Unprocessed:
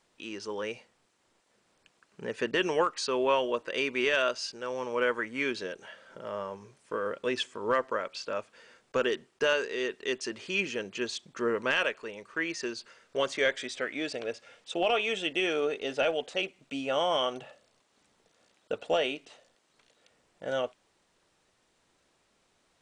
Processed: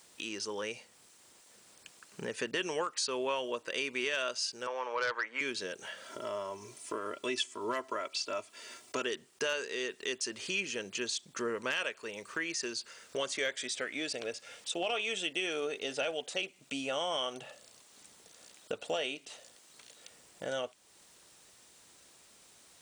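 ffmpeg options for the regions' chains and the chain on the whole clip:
-filter_complex "[0:a]asettb=1/sr,asplit=3[s0][s1][s2];[s0]atrim=end=4.674[s3];[s1]atrim=start=4.67:end=5.41,asetpts=PTS-STARTPTS,afade=t=in:d=0.004:c=qsin,afade=t=out:st=0.736:d=0.004:c=qsin,highpass=730,lowpass=2100,aeval=exprs='0.119*sin(PI/2*1.58*val(0)/0.119)':c=same[s4];[s2]atrim=start=5.406[s5];[s3][s4]acrossfade=d=0.004:c1=hsin:c2=qsin[s6];[s6][s5]acrossfade=d=0.004:c1=qsin:c2=hsin,asettb=1/sr,asplit=3[s7][s8][s9];[s7]atrim=end=6.044[s10];[s8]atrim=start=6.04:end=9.02,asetpts=PTS-STARTPTS,afade=t=in:d=0.004:c=qsin,afade=t=out:st=2.976:d=0.004:c=qsin,highpass=87,equalizer=f=1600:w=7.5:g=-7,aecho=1:1:3:0.72,atrim=end_sample=131418[s11];[s9]atrim=start=9.016[s12];[s10][s11]acrossfade=d=0.004:c1=hsin:c2=qsin[s13];[s13][s12]acrossfade=d=0.004:c1=qsin:c2=hsin,highpass=43,aemphasis=mode=production:type=75fm,acompressor=threshold=0.00447:ratio=2,volume=1.88"

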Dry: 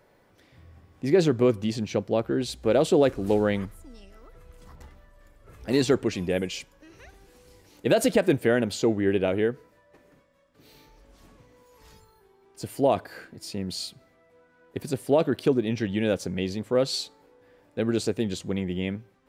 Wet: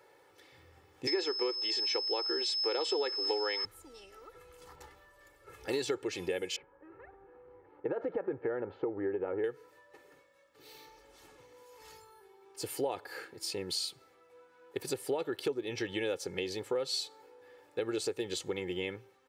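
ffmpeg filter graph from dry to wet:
-filter_complex "[0:a]asettb=1/sr,asplit=3[s0][s1][s2];[s0]atrim=end=1.074[s3];[s1]atrim=start=1.07:end=3.65,asetpts=PTS-STARTPTS,afade=t=in:d=0.004:c=qsin,afade=t=out:st=2.576:d=0.004:c=qsin,aeval=exprs='val(0)+0.0251*sin(2*PI*5200*n/s)':c=same,highpass=f=350:w=0.5412,highpass=f=350:w=1.3066,equalizer=f=570:t=q:w=4:g=-8,equalizer=f=1000:t=q:w=4:g=5,equalizer=f=1900:t=q:w=4:g=4,lowpass=f=7400:w=0.5412,lowpass=f=7400:w=1.3066,acontrast=23[s4];[s2]atrim=start=3.646[s5];[s3][s4]acrossfade=d=0.004:c1=hsin:c2=qsin[s6];[s6][s5]acrossfade=d=0.004:c1=qsin:c2=hsin,asettb=1/sr,asplit=3[s7][s8][s9];[s7]atrim=end=6.564[s10];[s8]atrim=start=6.56:end=9.44,asetpts=PTS-STARTPTS,afade=t=in:d=0.004:c=qsin,afade=t=out:st=2.876:d=0.004:c=qsin,lowpass=f=1500:w=0.5412,lowpass=f=1500:w=1.3066,acompressor=threshold=0.0631:ratio=2:attack=3.2:release=140:knee=1:detection=peak[s11];[s9]atrim=start=9.436[s12];[s10][s11]acrossfade=d=0.004:c1=hsin:c2=qsin[s13];[s13][s12]acrossfade=d=0.004:c1=qsin:c2=hsin,highpass=f=470:p=1,aecho=1:1:2.3:0.72,acompressor=threshold=0.0282:ratio=5"

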